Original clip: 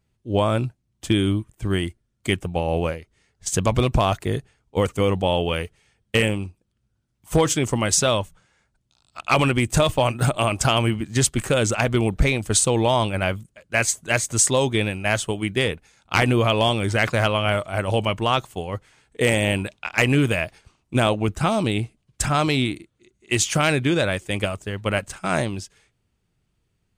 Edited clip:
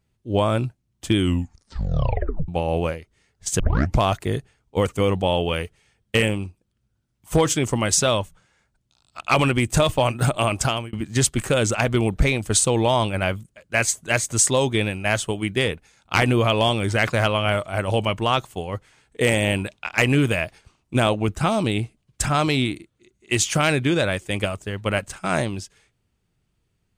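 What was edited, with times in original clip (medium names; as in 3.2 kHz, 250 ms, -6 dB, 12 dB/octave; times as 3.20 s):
1.17 s: tape stop 1.31 s
3.60 s: tape start 0.39 s
10.59–10.93 s: fade out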